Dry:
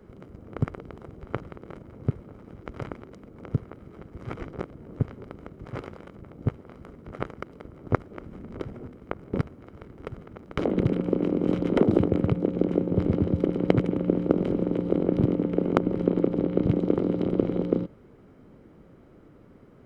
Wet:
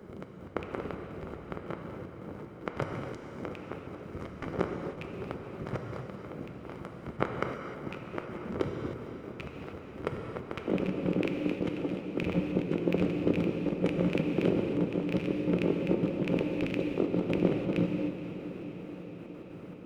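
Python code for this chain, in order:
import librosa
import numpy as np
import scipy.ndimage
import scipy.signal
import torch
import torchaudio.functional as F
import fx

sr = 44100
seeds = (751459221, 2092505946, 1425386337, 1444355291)

y = fx.rattle_buzz(x, sr, strikes_db=-22.0, level_db=-7.0)
y = fx.highpass(y, sr, hz=150.0, slope=6)
y = fx.over_compress(y, sr, threshold_db=-29.0, ratio=-0.5)
y = fx.step_gate(y, sr, bpm=190, pattern='xxx..x.x.xxx..', floor_db=-60.0, edge_ms=4.5)
y = fx.echo_diffused(y, sr, ms=490, feedback_pct=71, wet_db=-12.5)
y = fx.rev_gated(y, sr, seeds[0], gate_ms=330, shape='flat', drr_db=3.0)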